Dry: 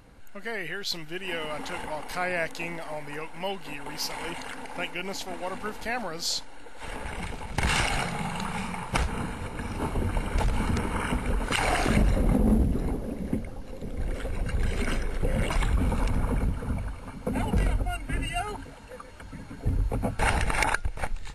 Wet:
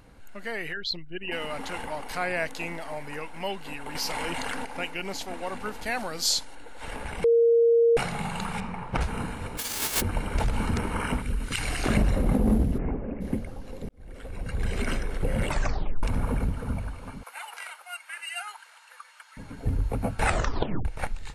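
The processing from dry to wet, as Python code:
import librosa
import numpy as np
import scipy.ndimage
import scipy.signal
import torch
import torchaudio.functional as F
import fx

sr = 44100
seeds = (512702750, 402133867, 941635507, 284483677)

y = fx.envelope_sharpen(x, sr, power=2.0, at=(0.72, 1.31), fade=0.02)
y = fx.env_flatten(y, sr, amount_pct=70, at=(3.95, 4.65))
y = fx.high_shelf(y, sr, hz=4400.0, db=8.0, at=(5.86, 6.55))
y = fx.lowpass(y, sr, hz=1400.0, slope=6, at=(8.6, 9.01))
y = fx.envelope_flatten(y, sr, power=0.1, at=(9.57, 10.0), fade=0.02)
y = fx.peak_eq(y, sr, hz=740.0, db=-14.0, octaves=2.1, at=(11.22, 11.84))
y = fx.steep_lowpass(y, sr, hz=2700.0, slope=72, at=(12.77, 13.2), fade=0.02)
y = fx.highpass(y, sr, hz=1000.0, slope=24, at=(17.23, 19.37))
y = fx.edit(y, sr, fx.bleep(start_s=7.24, length_s=0.73, hz=465.0, db=-16.0),
    fx.fade_in_span(start_s=13.89, length_s=0.84),
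    fx.tape_stop(start_s=15.48, length_s=0.55),
    fx.tape_stop(start_s=20.24, length_s=0.61), tone=tone)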